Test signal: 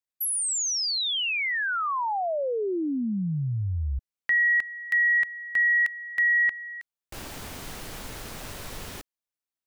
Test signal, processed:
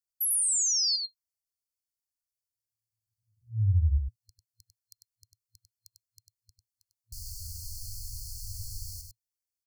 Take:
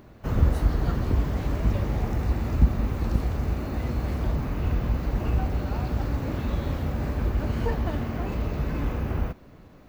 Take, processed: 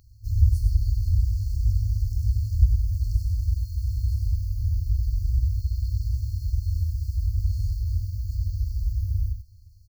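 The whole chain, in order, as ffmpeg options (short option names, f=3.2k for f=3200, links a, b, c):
-af "afftfilt=real='re*(1-between(b*sr/4096,110,4200))':imag='im*(1-between(b*sr/4096,110,4200))':win_size=4096:overlap=0.75,equalizer=f=95:w=1.5:g=4,aecho=1:1:98:0.531"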